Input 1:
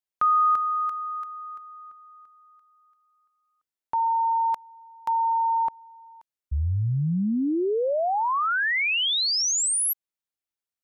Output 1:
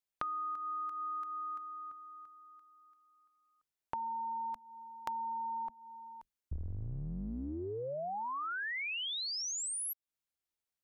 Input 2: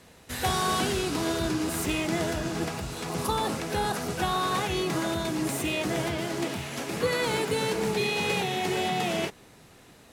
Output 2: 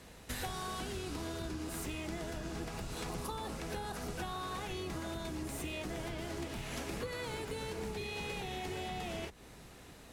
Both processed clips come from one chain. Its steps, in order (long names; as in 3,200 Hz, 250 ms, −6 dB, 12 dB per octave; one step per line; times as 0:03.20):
sub-octave generator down 2 octaves, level −1 dB
downward compressor 16 to 1, threshold −35 dBFS
level −1.5 dB